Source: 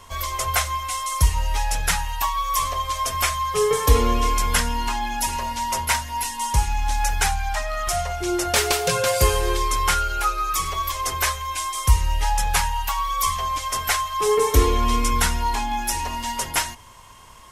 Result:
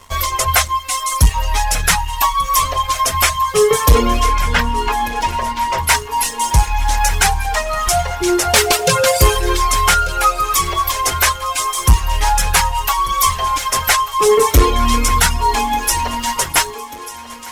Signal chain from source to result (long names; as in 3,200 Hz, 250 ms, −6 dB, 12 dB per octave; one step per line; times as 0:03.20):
reverb reduction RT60 0.93 s
0:04.26–0:05.84: low-pass filter 3,100 Hz 12 dB per octave
leveller curve on the samples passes 2
feedback echo with a high-pass in the loop 1,191 ms, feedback 67%, high-pass 170 Hz, level −16 dB
level +2 dB